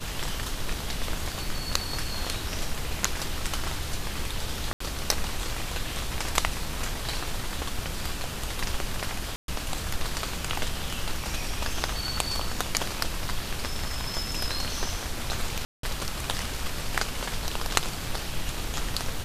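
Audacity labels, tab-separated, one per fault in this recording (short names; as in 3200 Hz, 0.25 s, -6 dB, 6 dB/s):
4.730000	4.800000	gap 74 ms
9.360000	9.480000	gap 0.122 s
15.650000	15.830000	gap 0.183 s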